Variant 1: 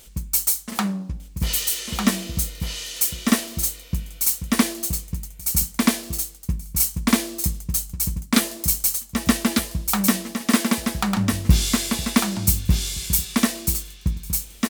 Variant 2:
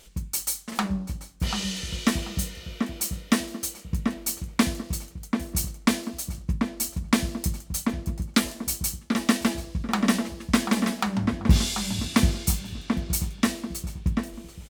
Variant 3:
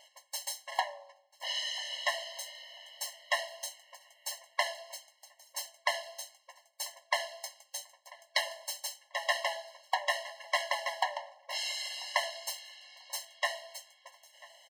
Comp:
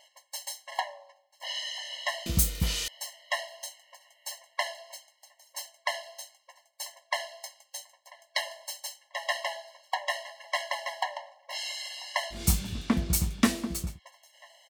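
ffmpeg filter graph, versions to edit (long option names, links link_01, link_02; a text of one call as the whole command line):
ffmpeg -i take0.wav -i take1.wav -i take2.wav -filter_complex "[2:a]asplit=3[link_01][link_02][link_03];[link_01]atrim=end=2.262[link_04];[0:a]atrim=start=2.258:end=2.882[link_05];[link_02]atrim=start=2.878:end=12.46[link_06];[1:a]atrim=start=12.3:end=14[link_07];[link_03]atrim=start=13.84[link_08];[link_04][link_05]acrossfade=duration=0.004:curve1=hsin:curve2=hsin[link_09];[link_09][link_06]acrossfade=duration=0.004:curve1=hsin:curve2=hsin[link_10];[link_10][link_07]acrossfade=duration=0.16:curve1=tri:curve2=tri[link_11];[link_11][link_08]acrossfade=duration=0.16:curve1=tri:curve2=tri" out.wav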